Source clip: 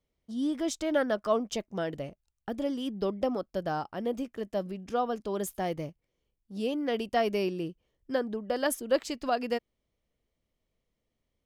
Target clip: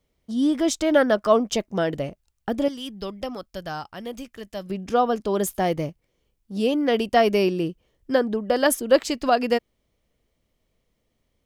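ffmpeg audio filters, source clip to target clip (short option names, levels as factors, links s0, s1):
-filter_complex "[0:a]asettb=1/sr,asplit=3[s0][s1][s2];[s0]atrim=end=2.684[s3];[s1]atrim=start=2.68:end=4.7,asetpts=PTS-STARTPTS,afade=t=in:d=0.004:c=qsin,afade=t=out:st=2.016:d=0.004:c=qsin,equalizer=f=380:w=0.32:g=-12.5[s4];[s2]atrim=start=4.696[s5];[s3][s4]acrossfade=d=0.004:c1=hsin:c2=qsin[s6];[s6][s5]acrossfade=d=0.004:c1=qsin:c2=hsin,volume=2.82"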